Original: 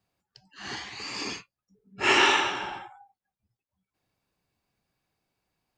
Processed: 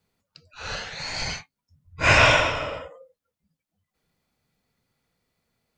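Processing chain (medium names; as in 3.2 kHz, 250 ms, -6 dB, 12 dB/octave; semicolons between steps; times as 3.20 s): frequency shift -280 Hz; trim +4.5 dB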